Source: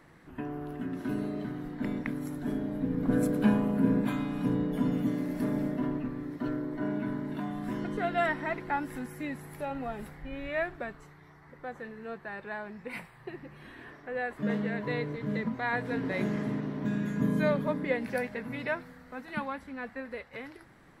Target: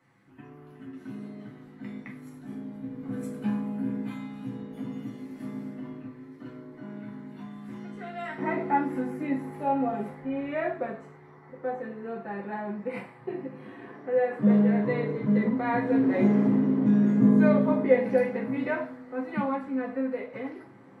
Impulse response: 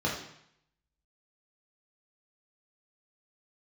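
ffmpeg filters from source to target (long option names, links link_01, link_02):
-filter_complex "[0:a]asetnsamples=nb_out_samples=441:pad=0,asendcmd='8.38 equalizer g 8',equalizer=frequency=400:width=0.32:gain=-9.5[link_01];[1:a]atrim=start_sample=2205,asetrate=74970,aresample=44100[link_02];[link_01][link_02]afir=irnorm=-1:irlink=0,volume=-9dB"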